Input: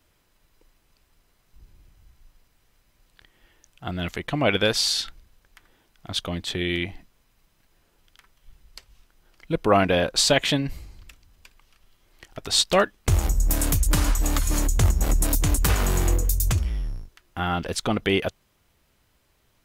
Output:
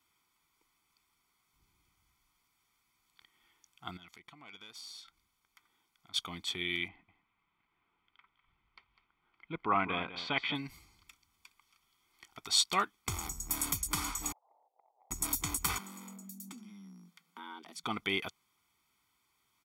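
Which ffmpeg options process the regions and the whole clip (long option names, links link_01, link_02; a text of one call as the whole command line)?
ffmpeg -i in.wav -filter_complex "[0:a]asettb=1/sr,asplit=3[link_01][link_02][link_03];[link_01]atrim=end=3.974[link_04];[link_02]atrim=start=3.97:end=6.14,asetpts=PTS-STARTPTS,afade=type=in:duration=0.004:curve=qsin,afade=type=out:start_time=2.166:duration=0.004:curve=qsin,acompressor=threshold=-42dB:ratio=3:attack=3.2:release=140:knee=1:detection=peak,aeval=exprs='(tanh(25.1*val(0)+0.6)-tanh(0.6))/25.1':channel_layout=same[link_05];[link_03]atrim=start=6.136[link_06];[link_04][link_05]acrossfade=duration=0.004:curve1=hsin:curve2=qsin[link_07];[link_07][link_06]acrossfade=duration=0.004:curve1=qsin:curve2=hsin,asettb=1/sr,asplit=3[link_08][link_09][link_10];[link_08]atrim=end=6.884[link_11];[link_09]atrim=start=6.88:end=10.55,asetpts=PTS-STARTPTS,afade=type=in:duration=0.004:curve=qsin,afade=type=out:start_time=3.666:duration=0.004:curve=qsin,lowpass=frequency=2900:width=0.5412,lowpass=frequency=2900:width=1.3066,aecho=1:1:201:0.237,atrim=end_sample=161847[link_12];[link_10]atrim=start=10.546[link_13];[link_11][link_12]acrossfade=duration=0.004:curve1=hsin:curve2=qsin[link_14];[link_14][link_13]acrossfade=duration=0.004:curve1=qsin:curve2=hsin,asettb=1/sr,asplit=3[link_15][link_16][link_17];[link_15]atrim=end=14.324[link_18];[link_16]atrim=start=14.32:end=15.11,asetpts=PTS-STARTPTS,afade=type=in:duration=0.004:curve=qsin,afade=type=out:start_time=0.786:duration=0.004:curve=qsin,asuperpass=centerf=650:order=8:qfactor=1.9,acompressor=threshold=-51dB:ratio=10:attack=3.2:release=140:knee=1:detection=peak[link_19];[link_17]atrim=start=15.106[link_20];[link_18][link_19]acrossfade=duration=0.004:curve1=hsin:curve2=qsin[link_21];[link_21][link_20]acrossfade=duration=0.004:curve1=qsin:curve2=hsin,asettb=1/sr,asplit=3[link_22][link_23][link_24];[link_22]atrim=end=15.784[link_25];[link_23]atrim=start=15.78:end=17.84,asetpts=PTS-STARTPTS,afade=type=in:duration=0.004:curve=qsin,afade=type=out:start_time=2.056:duration=0.004:curve=qsin,acompressor=threshold=-38dB:ratio=3:attack=3.2:release=140:knee=1:detection=peak,afreqshift=150[link_26];[link_24]atrim=start=17.836[link_27];[link_25][link_26]acrossfade=duration=0.004:curve1=hsin:curve2=qsin[link_28];[link_28][link_27]acrossfade=duration=0.004:curve1=qsin:curve2=hsin,highpass=frequency=590:poles=1,aecho=1:1:0.9:0.83,volume=-9dB" out.wav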